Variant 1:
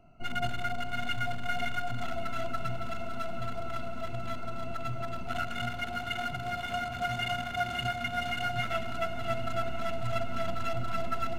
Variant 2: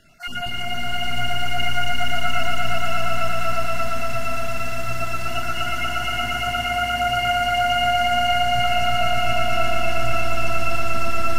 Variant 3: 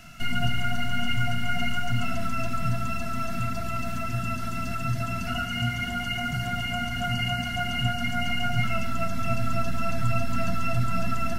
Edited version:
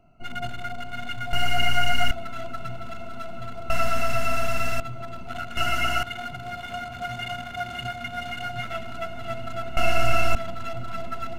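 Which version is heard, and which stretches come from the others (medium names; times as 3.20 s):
1
1.33–2.11 s: from 2
3.70–4.80 s: from 2
5.57–6.03 s: from 2
9.77–10.35 s: from 2
not used: 3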